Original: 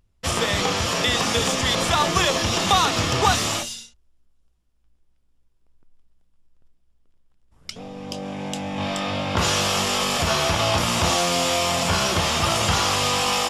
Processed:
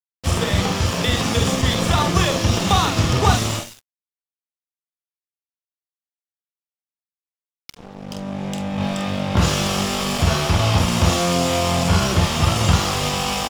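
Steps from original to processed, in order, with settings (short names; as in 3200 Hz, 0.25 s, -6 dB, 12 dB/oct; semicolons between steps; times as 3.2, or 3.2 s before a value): low shelf 280 Hz +11.5 dB; doubler 46 ms -6 dB; crossover distortion -29.5 dBFS; gain -1 dB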